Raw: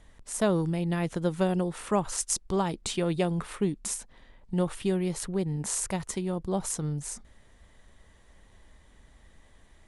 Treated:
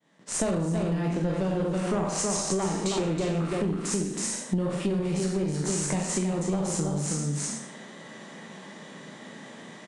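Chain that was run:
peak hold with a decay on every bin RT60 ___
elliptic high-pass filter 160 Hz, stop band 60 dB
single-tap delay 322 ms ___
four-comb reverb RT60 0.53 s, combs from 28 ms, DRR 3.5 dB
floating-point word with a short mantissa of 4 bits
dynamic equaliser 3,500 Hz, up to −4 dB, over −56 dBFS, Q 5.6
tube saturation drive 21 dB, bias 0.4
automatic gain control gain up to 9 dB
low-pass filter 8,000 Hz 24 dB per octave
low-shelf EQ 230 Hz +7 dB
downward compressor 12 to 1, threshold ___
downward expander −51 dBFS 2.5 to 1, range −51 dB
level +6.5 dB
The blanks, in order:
0.44 s, −6 dB, −31 dBFS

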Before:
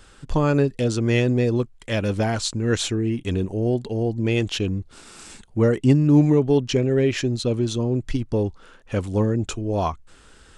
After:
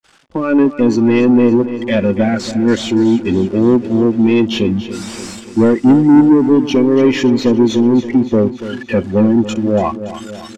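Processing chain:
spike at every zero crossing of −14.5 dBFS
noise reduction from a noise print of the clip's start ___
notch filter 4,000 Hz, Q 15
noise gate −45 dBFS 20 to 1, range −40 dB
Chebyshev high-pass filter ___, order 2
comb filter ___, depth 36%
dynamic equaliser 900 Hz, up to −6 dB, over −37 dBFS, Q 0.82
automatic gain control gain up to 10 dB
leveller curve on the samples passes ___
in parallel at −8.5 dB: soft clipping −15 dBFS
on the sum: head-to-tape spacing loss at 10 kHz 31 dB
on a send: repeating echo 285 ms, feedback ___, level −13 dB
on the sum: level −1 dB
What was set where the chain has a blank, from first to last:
18 dB, 230 Hz, 3.5 ms, 2, 59%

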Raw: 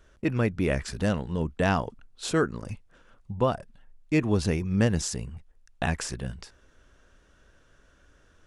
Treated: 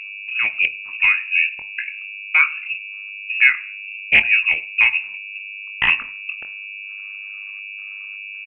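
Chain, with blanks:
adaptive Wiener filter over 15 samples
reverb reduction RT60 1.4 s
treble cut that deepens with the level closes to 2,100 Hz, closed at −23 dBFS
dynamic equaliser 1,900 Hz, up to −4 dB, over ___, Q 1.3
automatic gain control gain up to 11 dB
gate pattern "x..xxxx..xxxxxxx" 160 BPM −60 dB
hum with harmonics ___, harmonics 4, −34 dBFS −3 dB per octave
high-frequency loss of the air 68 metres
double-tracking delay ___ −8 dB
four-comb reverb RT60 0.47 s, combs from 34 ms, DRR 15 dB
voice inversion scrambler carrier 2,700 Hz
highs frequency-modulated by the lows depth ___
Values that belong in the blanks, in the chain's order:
−47 dBFS, 100 Hz, 23 ms, 0.19 ms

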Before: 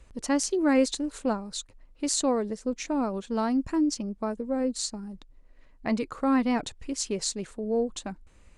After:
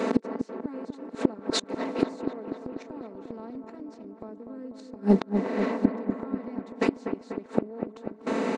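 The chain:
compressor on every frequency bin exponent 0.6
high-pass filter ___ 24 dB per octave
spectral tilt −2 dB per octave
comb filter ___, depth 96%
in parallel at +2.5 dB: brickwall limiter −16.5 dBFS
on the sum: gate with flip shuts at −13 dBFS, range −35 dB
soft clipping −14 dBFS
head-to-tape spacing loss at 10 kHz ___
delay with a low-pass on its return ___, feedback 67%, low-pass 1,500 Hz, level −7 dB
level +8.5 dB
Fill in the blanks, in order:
250 Hz, 4.5 ms, 20 dB, 245 ms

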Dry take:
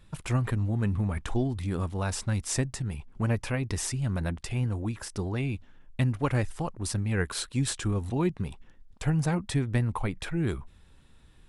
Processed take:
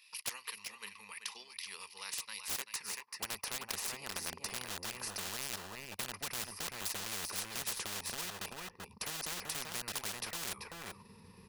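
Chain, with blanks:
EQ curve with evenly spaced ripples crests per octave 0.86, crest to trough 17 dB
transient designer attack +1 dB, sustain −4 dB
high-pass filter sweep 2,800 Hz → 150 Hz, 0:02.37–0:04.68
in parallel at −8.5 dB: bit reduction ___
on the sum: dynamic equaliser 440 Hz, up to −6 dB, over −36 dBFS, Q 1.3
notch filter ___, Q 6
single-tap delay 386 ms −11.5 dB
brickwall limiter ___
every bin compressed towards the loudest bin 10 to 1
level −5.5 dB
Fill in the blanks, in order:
4 bits, 2,200 Hz, −12.5 dBFS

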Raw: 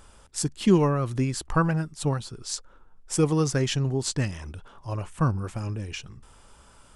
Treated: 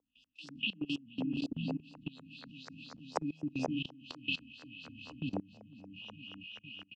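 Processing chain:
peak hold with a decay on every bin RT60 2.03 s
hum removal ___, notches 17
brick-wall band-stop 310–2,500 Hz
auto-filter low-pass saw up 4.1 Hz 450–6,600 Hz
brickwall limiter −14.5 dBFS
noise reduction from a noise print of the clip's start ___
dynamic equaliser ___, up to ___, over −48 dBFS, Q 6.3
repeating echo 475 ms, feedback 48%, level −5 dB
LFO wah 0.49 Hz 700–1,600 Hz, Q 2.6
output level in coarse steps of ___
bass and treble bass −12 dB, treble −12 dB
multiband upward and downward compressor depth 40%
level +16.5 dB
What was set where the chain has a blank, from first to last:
204.7 Hz, 13 dB, 6,100 Hz, −3 dB, 22 dB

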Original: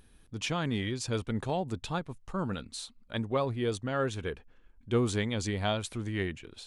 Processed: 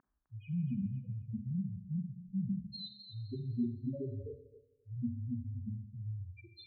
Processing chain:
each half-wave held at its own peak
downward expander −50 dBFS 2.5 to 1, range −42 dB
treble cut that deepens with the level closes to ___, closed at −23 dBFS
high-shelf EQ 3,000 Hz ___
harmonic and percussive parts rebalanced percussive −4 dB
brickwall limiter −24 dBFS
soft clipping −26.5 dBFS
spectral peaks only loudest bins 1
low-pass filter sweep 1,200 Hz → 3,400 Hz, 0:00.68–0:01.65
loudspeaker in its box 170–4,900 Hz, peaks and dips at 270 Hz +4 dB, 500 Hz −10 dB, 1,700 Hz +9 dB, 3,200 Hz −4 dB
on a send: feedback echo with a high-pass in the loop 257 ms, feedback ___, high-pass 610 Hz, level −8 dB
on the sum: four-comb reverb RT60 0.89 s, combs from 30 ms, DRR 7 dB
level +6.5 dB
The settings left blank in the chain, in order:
330 Hz, +4 dB, 28%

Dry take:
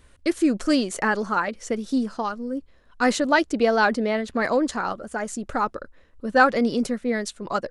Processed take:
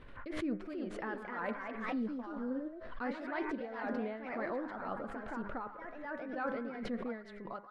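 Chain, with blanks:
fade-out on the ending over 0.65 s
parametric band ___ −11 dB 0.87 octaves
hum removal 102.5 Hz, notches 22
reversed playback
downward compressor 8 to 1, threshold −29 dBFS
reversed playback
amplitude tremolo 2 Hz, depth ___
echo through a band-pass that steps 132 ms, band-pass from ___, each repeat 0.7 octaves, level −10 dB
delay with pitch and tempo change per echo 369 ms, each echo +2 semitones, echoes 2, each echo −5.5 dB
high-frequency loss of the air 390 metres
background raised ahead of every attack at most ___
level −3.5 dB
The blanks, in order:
63 Hz, 83%, 1,200 Hz, 47 dB per second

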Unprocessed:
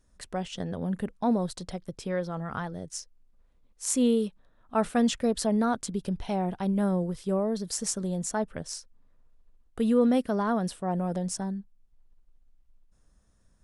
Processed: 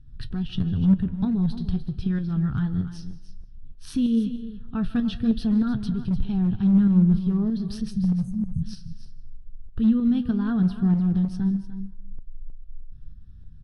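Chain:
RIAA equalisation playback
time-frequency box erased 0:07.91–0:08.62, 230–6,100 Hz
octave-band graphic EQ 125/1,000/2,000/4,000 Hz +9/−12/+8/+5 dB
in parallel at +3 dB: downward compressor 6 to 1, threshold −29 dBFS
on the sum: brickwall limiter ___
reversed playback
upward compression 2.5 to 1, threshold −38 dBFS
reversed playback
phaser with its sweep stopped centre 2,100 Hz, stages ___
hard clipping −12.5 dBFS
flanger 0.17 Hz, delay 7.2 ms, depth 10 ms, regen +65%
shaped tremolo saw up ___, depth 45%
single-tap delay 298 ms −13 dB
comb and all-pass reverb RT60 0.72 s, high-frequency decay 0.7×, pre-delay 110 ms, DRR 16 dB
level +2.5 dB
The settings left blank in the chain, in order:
−10 dBFS, 6, 3.2 Hz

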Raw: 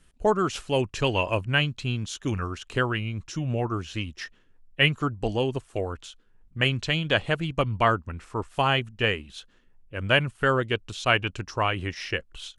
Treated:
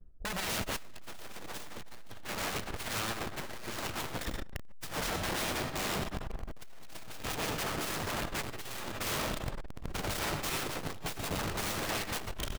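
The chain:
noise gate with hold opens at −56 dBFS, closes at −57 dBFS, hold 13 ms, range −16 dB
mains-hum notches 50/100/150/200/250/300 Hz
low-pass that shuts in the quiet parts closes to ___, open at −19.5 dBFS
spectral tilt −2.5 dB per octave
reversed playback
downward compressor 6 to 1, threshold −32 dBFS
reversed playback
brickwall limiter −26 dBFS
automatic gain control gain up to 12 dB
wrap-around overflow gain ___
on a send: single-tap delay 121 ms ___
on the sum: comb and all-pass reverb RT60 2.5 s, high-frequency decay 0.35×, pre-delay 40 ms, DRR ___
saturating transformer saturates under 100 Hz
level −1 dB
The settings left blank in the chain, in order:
670 Hz, 29 dB, −13.5 dB, 3 dB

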